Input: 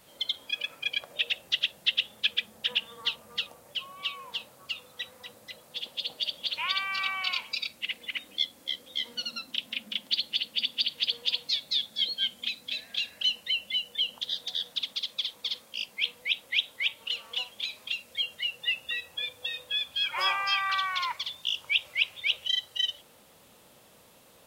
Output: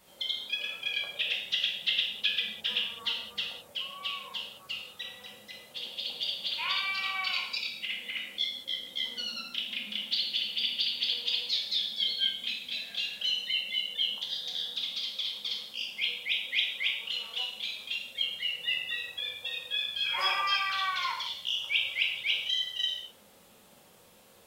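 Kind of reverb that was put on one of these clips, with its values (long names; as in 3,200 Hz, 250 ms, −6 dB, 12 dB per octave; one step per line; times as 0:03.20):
reverb whose tail is shaped and stops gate 230 ms falling, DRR −1.5 dB
level −4.5 dB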